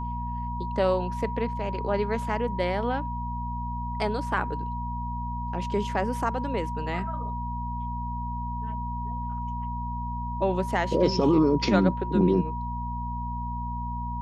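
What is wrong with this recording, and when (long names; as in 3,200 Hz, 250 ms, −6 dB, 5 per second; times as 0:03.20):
mains hum 60 Hz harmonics 4 −33 dBFS
whistle 960 Hz −33 dBFS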